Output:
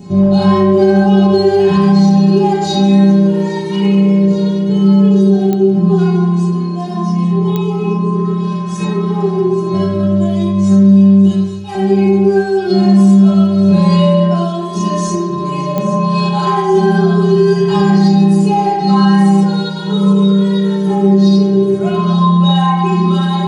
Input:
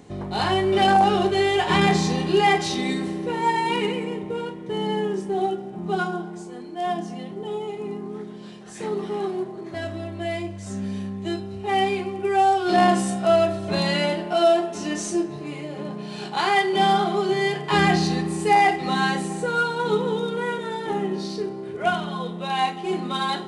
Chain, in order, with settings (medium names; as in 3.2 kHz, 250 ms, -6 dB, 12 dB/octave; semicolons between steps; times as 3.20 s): 11.27–11.75 s: amplifier tone stack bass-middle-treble 10-0-10; 16.82–17.71 s: comb 4.4 ms, depth 88%; compression 3:1, threshold -31 dBFS, peak gain reduction 13 dB; inharmonic resonator 190 Hz, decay 0.35 s, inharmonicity 0.008; feedback echo behind a high-pass 830 ms, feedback 76%, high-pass 3.7 kHz, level -12.5 dB; reverberation RT60 1.1 s, pre-delay 3 ms, DRR -4.5 dB; clicks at 5.53/7.56/15.78 s, -25 dBFS; loudness maximiser +20.5 dB; trim -1 dB